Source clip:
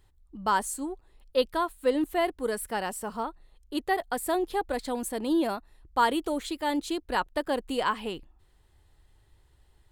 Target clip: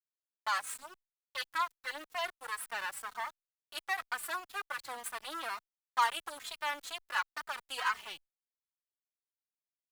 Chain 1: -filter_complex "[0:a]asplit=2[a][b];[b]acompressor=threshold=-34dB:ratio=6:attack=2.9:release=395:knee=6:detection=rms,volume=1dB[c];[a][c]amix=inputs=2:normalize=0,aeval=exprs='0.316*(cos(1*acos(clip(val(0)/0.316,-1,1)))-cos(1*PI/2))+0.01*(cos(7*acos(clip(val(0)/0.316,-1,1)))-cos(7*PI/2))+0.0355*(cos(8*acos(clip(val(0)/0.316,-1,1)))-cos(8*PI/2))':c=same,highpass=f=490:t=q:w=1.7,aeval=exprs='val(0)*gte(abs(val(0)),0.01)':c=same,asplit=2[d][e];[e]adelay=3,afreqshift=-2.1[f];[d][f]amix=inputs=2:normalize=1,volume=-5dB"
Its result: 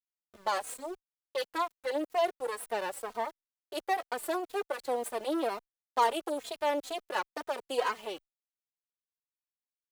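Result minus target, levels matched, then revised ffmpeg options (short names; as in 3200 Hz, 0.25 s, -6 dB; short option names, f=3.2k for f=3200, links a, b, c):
500 Hz band +13.0 dB
-filter_complex "[0:a]asplit=2[a][b];[b]acompressor=threshold=-34dB:ratio=6:attack=2.9:release=395:knee=6:detection=rms,volume=1dB[c];[a][c]amix=inputs=2:normalize=0,aeval=exprs='0.316*(cos(1*acos(clip(val(0)/0.316,-1,1)))-cos(1*PI/2))+0.01*(cos(7*acos(clip(val(0)/0.316,-1,1)))-cos(7*PI/2))+0.0355*(cos(8*acos(clip(val(0)/0.316,-1,1)))-cos(8*PI/2))':c=same,highpass=f=1.3k:t=q:w=1.7,aeval=exprs='val(0)*gte(abs(val(0)),0.01)':c=same,asplit=2[d][e];[e]adelay=3,afreqshift=-2.1[f];[d][f]amix=inputs=2:normalize=1,volume=-5dB"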